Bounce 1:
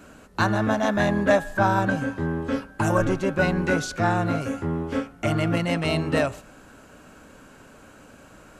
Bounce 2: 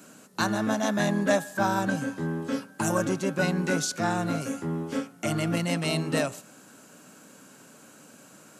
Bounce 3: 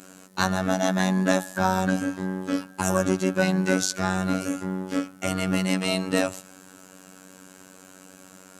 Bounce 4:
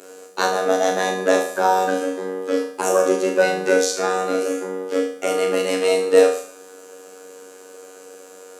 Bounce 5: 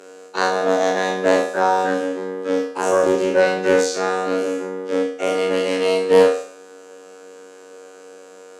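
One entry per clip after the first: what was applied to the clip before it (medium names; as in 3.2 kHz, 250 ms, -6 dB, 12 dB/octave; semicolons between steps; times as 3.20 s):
high-pass 150 Hz 24 dB/octave; tone controls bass +5 dB, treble +12 dB; trim -5 dB
word length cut 12-bit, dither none; robot voice 93.7 Hz; trim +5 dB
resonant high-pass 440 Hz, resonance Q 5.2; on a send: flutter echo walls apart 6.2 m, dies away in 0.53 s; on the sum: trim +1 dB
every event in the spectrogram widened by 60 ms; distance through air 62 m; loudspeaker Doppler distortion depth 0.16 ms; trim -1.5 dB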